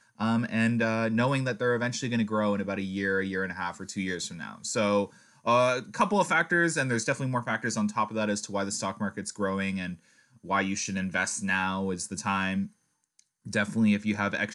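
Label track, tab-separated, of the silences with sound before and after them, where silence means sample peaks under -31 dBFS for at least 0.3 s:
5.050000	5.470000	silence
9.920000	10.500000	silence
12.640000	13.470000	silence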